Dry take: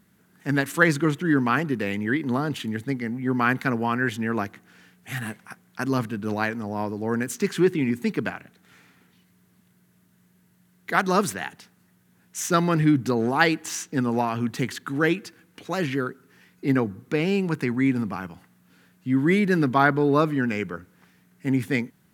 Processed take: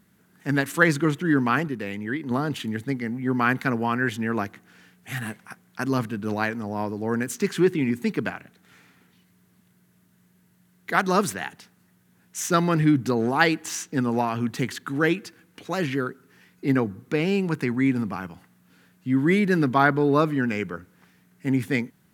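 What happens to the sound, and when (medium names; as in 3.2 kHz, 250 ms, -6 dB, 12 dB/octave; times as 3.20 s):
1.68–2.31 s: gain -4.5 dB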